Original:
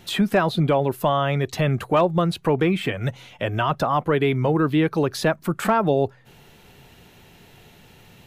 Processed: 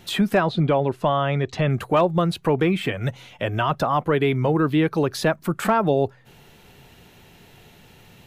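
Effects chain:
0:00.40–0:01.70: high-frequency loss of the air 88 metres

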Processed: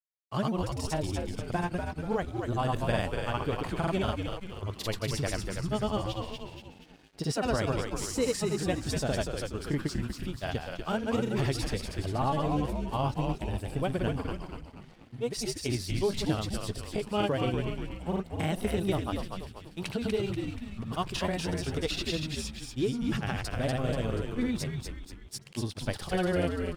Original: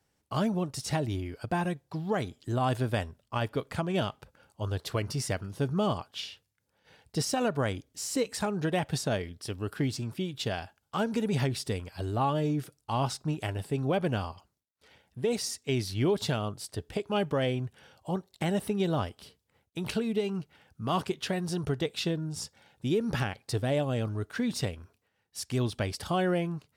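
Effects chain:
granular cloud, pitch spread up and down by 0 semitones
echo with shifted repeats 241 ms, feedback 50%, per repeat −96 Hz, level −4.5 dB
dead-zone distortion −56.5 dBFS

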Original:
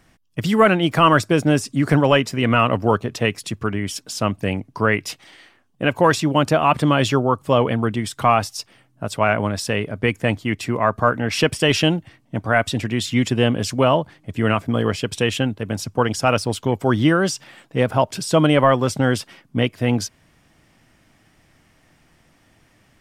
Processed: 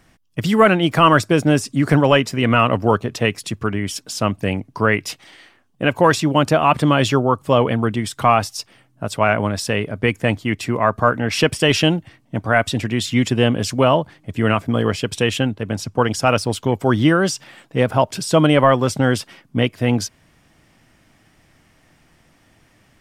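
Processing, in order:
0:15.50–0:15.98: high-shelf EQ 9,700 Hz −7.5 dB
level +1.5 dB

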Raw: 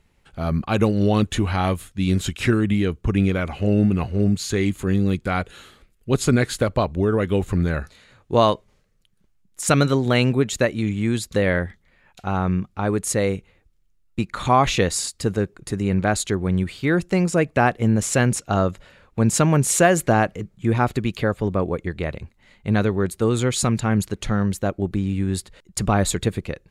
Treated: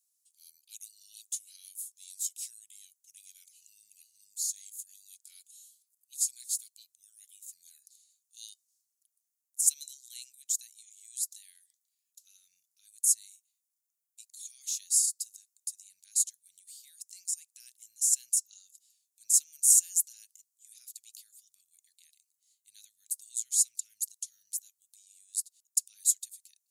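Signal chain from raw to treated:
inverse Chebyshev high-pass filter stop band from 1,100 Hz, stop band 80 dB
high-shelf EQ 10,000 Hz +7 dB

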